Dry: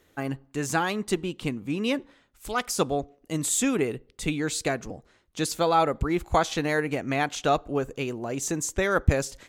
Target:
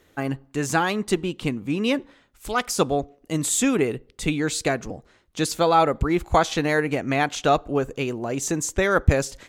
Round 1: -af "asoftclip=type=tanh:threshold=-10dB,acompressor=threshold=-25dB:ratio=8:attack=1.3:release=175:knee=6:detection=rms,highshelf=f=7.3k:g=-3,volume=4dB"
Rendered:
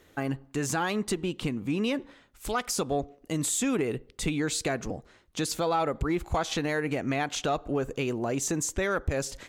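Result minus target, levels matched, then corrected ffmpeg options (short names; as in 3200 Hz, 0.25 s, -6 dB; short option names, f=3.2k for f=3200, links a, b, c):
compressor: peak gain reduction +12.5 dB; soft clip: distortion +12 dB
-af "asoftclip=type=tanh:threshold=-1.5dB,highshelf=f=7.3k:g=-3,volume=4dB"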